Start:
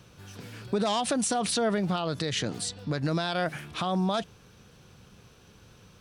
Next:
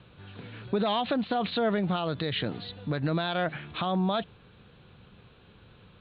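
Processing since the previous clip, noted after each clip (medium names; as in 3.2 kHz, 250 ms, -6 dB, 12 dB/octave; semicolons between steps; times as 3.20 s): steep low-pass 4.1 kHz 96 dB/octave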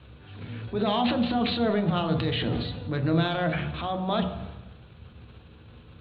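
transient shaper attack -7 dB, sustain +8 dB; on a send at -5.5 dB: reverberation RT60 1.0 s, pre-delay 3 ms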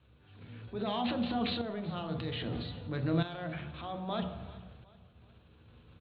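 tremolo saw up 0.62 Hz, depth 65%; feedback delay 379 ms, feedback 42%, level -20 dB; trim -6 dB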